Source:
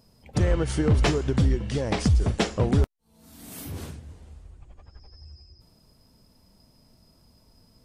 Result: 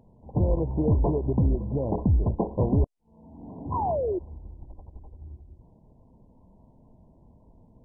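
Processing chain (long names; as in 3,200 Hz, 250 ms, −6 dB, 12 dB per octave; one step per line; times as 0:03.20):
in parallel at +1.5 dB: downward compressor 12 to 1, threshold −33 dBFS, peak gain reduction 17.5 dB
on the sum: sound drawn into the spectrogram fall, 0:03.49–0:04.19, 340–1,900 Hz −24 dBFS
level −3 dB
MP2 8 kbit/s 22,050 Hz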